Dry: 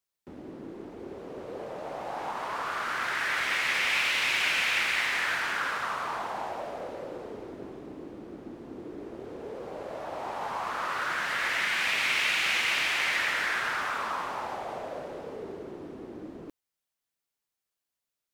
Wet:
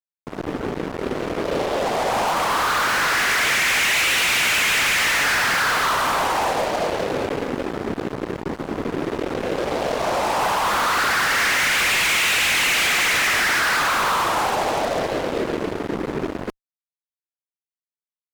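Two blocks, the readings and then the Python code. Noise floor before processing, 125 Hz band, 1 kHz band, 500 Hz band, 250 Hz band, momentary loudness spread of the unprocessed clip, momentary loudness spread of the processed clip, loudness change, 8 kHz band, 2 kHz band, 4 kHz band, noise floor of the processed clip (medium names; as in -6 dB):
under -85 dBFS, +16.5 dB, +12.0 dB, +14.0 dB, +14.5 dB, 18 LU, 11 LU, +9.0 dB, +16.0 dB, +9.0 dB, +10.0 dB, under -85 dBFS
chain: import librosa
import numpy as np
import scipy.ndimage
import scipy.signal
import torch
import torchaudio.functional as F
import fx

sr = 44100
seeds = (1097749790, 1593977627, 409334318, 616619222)

y = fx.whisperise(x, sr, seeds[0])
y = fx.fuzz(y, sr, gain_db=40.0, gate_db=-44.0)
y = y * librosa.db_to_amplitude(-4.5)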